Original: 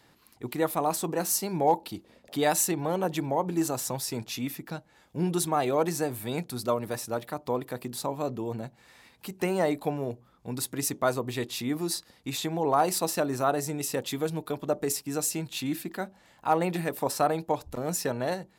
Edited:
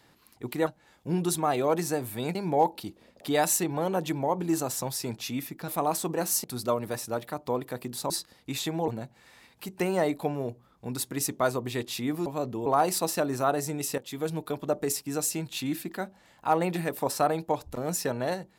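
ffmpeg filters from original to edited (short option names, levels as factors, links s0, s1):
-filter_complex "[0:a]asplit=10[s0][s1][s2][s3][s4][s5][s6][s7][s8][s9];[s0]atrim=end=0.672[s10];[s1]atrim=start=4.758:end=6.442[s11];[s2]atrim=start=1.428:end=4.762[s12];[s3]atrim=start=0.668:end=1.432[s13];[s4]atrim=start=6.438:end=8.102[s14];[s5]atrim=start=11.878:end=12.662[s15];[s6]atrim=start=8.498:end=11.882[s16];[s7]atrim=start=8.098:end=8.502[s17];[s8]atrim=start=12.658:end=13.98,asetpts=PTS-STARTPTS,afade=t=out:st=1.318:d=0.004:c=hsin:silence=0.16788[s18];[s9]atrim=start=13.98,asetpts=PTS-STARTPTS,afade=t=in:d=0.32:silence=0.16788[s19];[s10][s11]acrossfade=d=0.004:c1=hsin:c2=hsin[s20];[s20][s12]acrossfade=d=0.004:c1=hsin:c2=hsin[s21];[s21][s13]acrossfade=d=0.004:c1=hsin:c2=hsin[s22];[s22][s14]acrossfade=d=0.004:c1=hsin:c2=hsin[s23];[s23][s15]acrossfade=d=0.004:c1=hsin:c2=hsin[s24];[s24][s16]acrossfade=d=0.004:c1=hsin:c2=hsin[s25];[s25][s17]acrossfade=d=0.004:c1=hsin:c2=hsin[s26];[s18][s19]concat=n=2:v=0:a=1[s27];[s26][s27]acrossfade=d=0.004:c1=hsin:c2=hsin"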